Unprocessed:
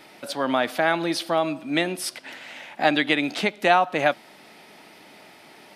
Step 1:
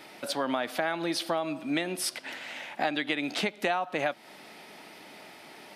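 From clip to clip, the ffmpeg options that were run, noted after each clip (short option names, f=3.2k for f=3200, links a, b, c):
-af "lowshelf=f=110:g=-5,acompressor=threshold=-26dB:ratio=5"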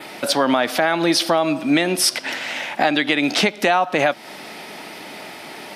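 -filter_complex "[0:a]adynamicequalizer=threshold=0.00282:dfrequency=5500:dqfactor=3.9:tfrequency=5500:tqfactor=3.9:attack=5:release=100:ratio=0.375:range=3:mode=boostabove:tftype=bell,asplit=2[a][b];[b]alimiter=limit=-21.5dB:level=0:latency=1:release=30,volume=2dB[c];[a][c]amix=inputs=2:normalize=0,volume=6dB"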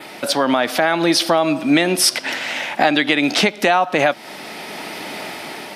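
-af "dynaudnorm=f=230:g=5:m=6dB"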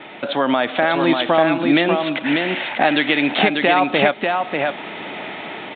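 -af "aresample=8000,aresample=44100,aecho=1:1:592:0.631,volume=-1dB"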